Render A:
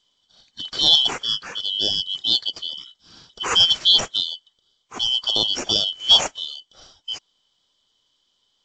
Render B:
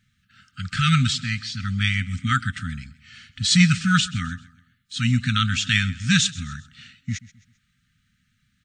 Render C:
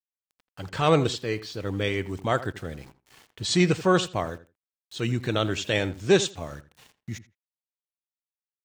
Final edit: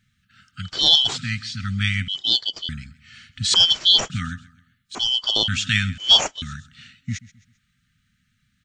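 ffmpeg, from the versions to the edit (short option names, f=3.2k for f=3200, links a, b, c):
-filter_complex "[0:a]asplit=5[a][b][c][d][e];[1:a]asplit=6[f][g][h][i][j][k];[f]atrim=end=0.77[l];[a]atrim=start=0.61:end=1.2[m];[g]atrim=start=1.04:end=2.082[n];[b]atrim=start=2.078:end=2.692[o];[h]atrim=start=2.688:end=3.542[p];[c]atrim=start=3.538:end=4.102[q];[i]atrim=start=4.098:end=4.952[r];[d]atrim=start=4.948:end=5.482[s];[j]atrim=start=5.478:end=5.982[t];[e]atrim=start=5.978:end=6.422[u];[k]atrim=start=6.418[v];[l][m]acrossfade=d=0.16:c1=tri:c2=tri[w];[w][n]acrossfade=d=0.16:c1=tri:c2=tri[x];[x][o]acrossfade=d=0.004:c1=hsin:c2=hsin[y];[y][p]acrossfade=d=0.004:c1=hsin:c2=hsin[z];[z][q]acrossfade=d=0.004:c1=hsin:c2=hsin[aa];[aa][r]acrossfade=d=0.004:c1=hsin:c2=hsin[ab];[ab][s]acrossfade=d=0.004:c1=hsin:c2=hsin[ac];[ac][t]acrossfade=d=0.004:c1=hsin:c2=hsin[ad];[ad][u]acrossfade=d=0.004:c1=hsin:c2=hsin[ae];[ae][v]acrossfade=d=0.004:c1=hsin:c2=hsin"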